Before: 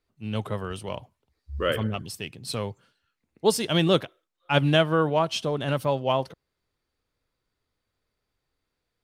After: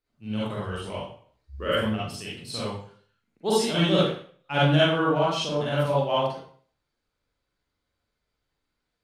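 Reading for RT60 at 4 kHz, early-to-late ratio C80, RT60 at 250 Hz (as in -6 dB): 0.45 s, 4.5 dB, 0.45 s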